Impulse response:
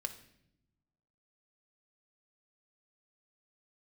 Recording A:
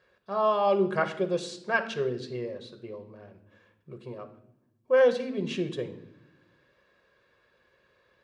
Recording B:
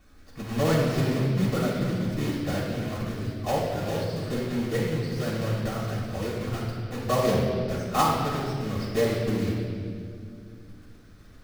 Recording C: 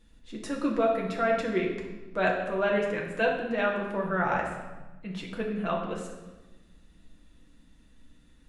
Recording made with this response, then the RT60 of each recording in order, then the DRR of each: A; non-exponential decay, 2.3 s, 1.2 s; 7.0, −9.0, −2.0 decibels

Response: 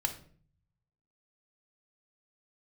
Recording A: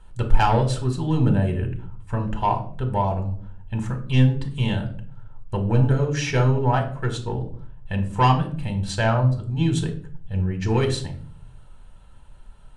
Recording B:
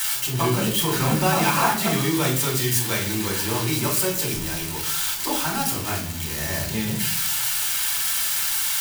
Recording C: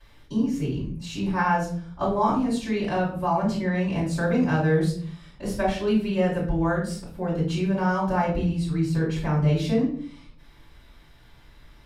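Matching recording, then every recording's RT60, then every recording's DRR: A; 0.50, 0.50, 0.50 seconds; 4.0, −3.0, −13.0 decibels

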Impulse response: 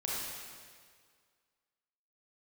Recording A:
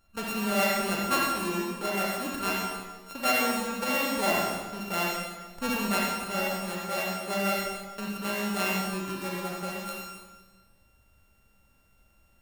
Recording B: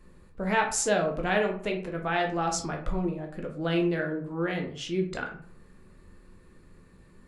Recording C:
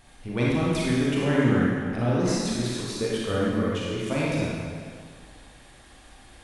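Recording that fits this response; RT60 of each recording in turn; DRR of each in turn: C; 1.4, 0.55, 1.9 seconds; −3.5, 1.5, −6.0 decibels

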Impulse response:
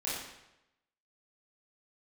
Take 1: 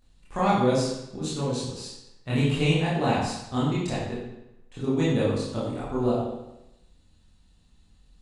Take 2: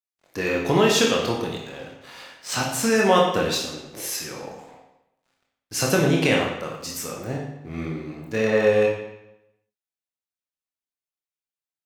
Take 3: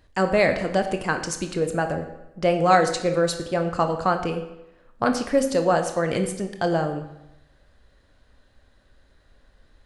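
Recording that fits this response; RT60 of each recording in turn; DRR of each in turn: 1; 0.90, 0.90, 0.90 seconds; −9.5, −2.0, 6.0 decibels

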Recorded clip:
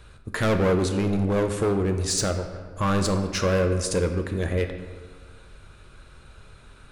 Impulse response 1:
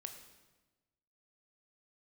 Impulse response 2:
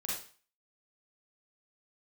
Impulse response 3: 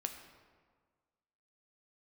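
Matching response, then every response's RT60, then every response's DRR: 3; 1.2, 0.40, 1.6 seconds; 5.5, −6.0, 5.0 decibels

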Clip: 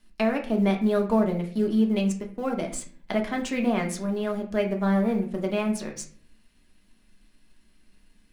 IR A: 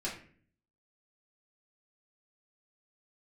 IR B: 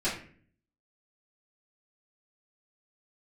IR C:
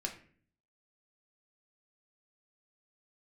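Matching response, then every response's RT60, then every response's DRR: C; 0.50, 0.50, 0.50 seconds; −7.0, −13.0, 1.5 decibels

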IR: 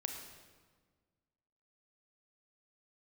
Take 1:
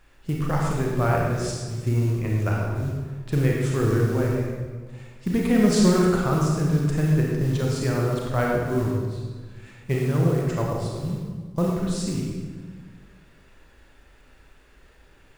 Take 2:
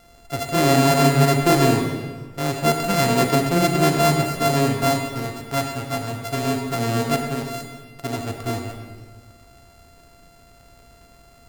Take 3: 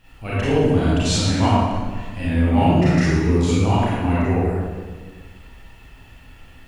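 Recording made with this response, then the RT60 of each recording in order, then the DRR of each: 2; 1.5, 1.6, 1.5 seconds; −2.5, 3.0, −10.5 decibels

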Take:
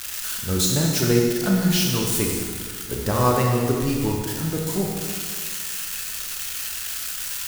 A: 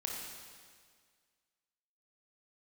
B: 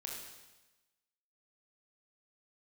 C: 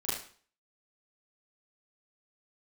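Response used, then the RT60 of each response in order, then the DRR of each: A; 1.8, 1.1, 0.45 seconds; −1.5, −2.0, −10.0 decibels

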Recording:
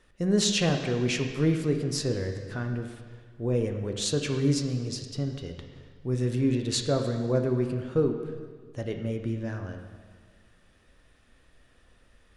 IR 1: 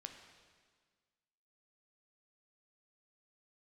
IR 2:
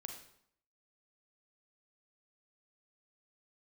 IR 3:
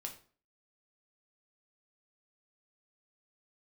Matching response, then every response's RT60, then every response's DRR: 1; 1.6, 0.65, 0.45 seconds; 4.5, 3.5, 1.5 decibels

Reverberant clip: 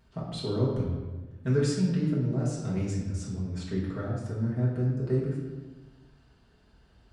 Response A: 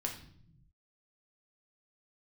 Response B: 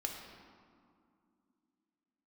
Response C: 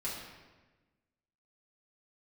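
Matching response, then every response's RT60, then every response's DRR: C; non-exponential decay, 2.4 s, 1.2 s; 0.5, 1.0, −7.5 decibels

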